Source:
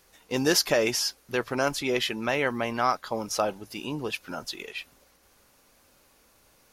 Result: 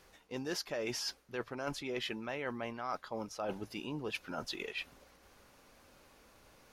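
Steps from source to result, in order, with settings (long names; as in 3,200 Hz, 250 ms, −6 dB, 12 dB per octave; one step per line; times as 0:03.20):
high-shelf EQ 6,000 Hz −11 dB
reversed playback
downward compressor 6 to 1, threshold −38 dBFS, peak gain reduction 18 dB
reversed playback
level +1.5 dB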